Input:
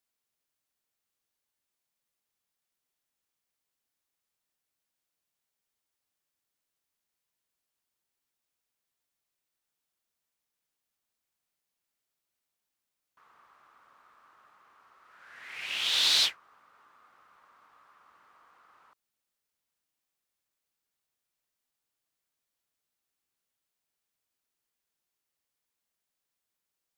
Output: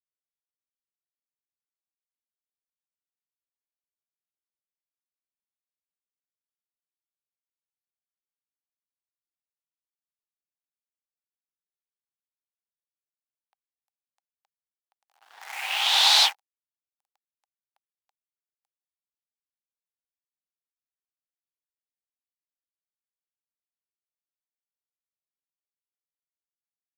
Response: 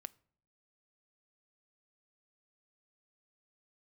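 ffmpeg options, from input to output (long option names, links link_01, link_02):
-af "aeval=exprs='sgn(val(0))*max(abs(val(0))-0.00237,0)':channel_layout=same,acrusher=bits=8:dc=4:mix=0:aa=0.000001,highpass=frequency=800:width_type=q:width=7.6,volume=5.5dB"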